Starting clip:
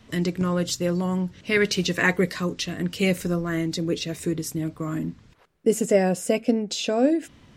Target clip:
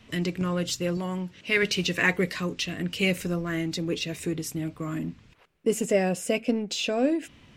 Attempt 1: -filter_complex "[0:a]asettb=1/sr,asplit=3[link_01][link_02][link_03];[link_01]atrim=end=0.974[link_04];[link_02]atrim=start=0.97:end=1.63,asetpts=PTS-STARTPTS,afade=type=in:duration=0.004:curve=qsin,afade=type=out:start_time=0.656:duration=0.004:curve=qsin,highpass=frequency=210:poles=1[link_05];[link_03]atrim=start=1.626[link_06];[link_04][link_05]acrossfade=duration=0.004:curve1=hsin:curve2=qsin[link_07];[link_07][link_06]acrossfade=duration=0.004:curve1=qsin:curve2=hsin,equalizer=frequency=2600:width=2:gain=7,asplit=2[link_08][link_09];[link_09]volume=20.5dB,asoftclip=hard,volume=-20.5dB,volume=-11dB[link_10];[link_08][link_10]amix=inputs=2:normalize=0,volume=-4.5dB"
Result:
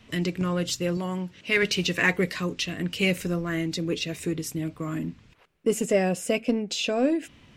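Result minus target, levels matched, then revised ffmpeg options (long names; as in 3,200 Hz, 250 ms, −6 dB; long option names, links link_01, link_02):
gain into a clipping stage and back: distortion −5 dB
-filter_complex "[0:a]asettb=1/sr,asplit=3[link_01][link_02][link_03];[link_01]atrim=end=0.974[link_04];[link_02]atrim=start=0.97:end=1.63,asetpts=PTS-STARTPTS,afade=type=in:duration=0.004:curve=qsin,afade=type=out:start_time=0.656:duration=0.004:curve=qsin,highpass=frequency=210:poles=1[link_05];[link_03]atrim=start=1.626[link_06];[link_04][link_05]acrossfade=duration=0.004:curve1=hsin:curve2=qsin[link_07];[link_07][link_06]acrossfade=duration=0.004:curve1=qsin:curve2=hsin,equalizer=frequency=2600:width=2:gain=7,asplit=2[link_08][link_09];[link_09]volume=29.5dB,asoftclip=hard,volume=-29.5dB,volume=-11dB[link_10];[link_08][link_10]amix=inputs=2:normalize=0,volume=-4.5dB"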